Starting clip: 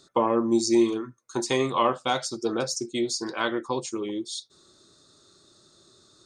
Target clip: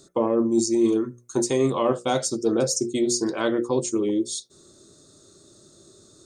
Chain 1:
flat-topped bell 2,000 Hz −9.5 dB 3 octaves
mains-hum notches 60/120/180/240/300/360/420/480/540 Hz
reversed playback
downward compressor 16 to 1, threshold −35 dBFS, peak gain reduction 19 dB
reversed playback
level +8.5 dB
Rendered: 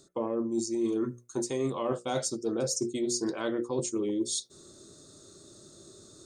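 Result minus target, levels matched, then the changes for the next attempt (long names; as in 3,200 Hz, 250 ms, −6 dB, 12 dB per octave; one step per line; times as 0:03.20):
downward compressor: peak gain reduction +9.5 dB
change: downward compressor 16 to 1, threshold −25 dBFS, peak gain reduction 10 dB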